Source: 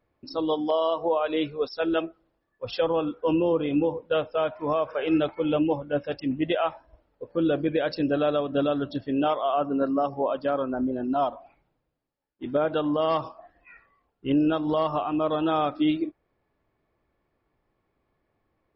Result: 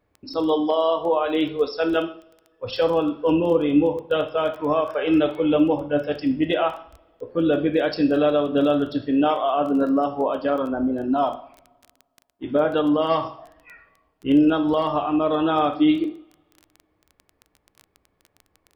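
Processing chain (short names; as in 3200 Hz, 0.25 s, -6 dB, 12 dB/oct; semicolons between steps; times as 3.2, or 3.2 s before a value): two-slope reverb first 0.47 s, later 1.9 s, from -27 dB, DRR 5.5 dB; crackle 13/s -35 dBFS; gain +3 dB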